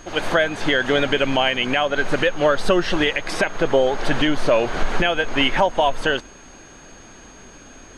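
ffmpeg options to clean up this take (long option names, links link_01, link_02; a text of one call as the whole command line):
ffmpeg -i in.wav -af "bandreject=frequency=6500:width=30" out.wav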